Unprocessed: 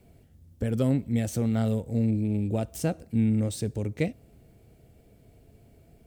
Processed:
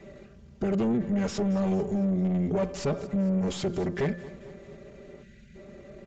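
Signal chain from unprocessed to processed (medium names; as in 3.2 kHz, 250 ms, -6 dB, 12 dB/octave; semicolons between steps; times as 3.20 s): spectral selection erased 5.22–5.54 s, 270–1600 Hz; comb 4.4 ms, depth 76%; de-hum 201.5 Hz, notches 10; in parallel at 0 dB: peak limiter -28 dBFS, peak gain reduction 16 dB; on the sum: valve stage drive 23 dB, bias 0.45; pitch shift -2.5 st; overdrive pedal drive 18 dB, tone 1.2 kHz, clips at -19.5 dBFS; on a send: feedback delay 224 ms, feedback 55%, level -18 dB; on the sum: resampled via 16 kHz; trim +1.5 dB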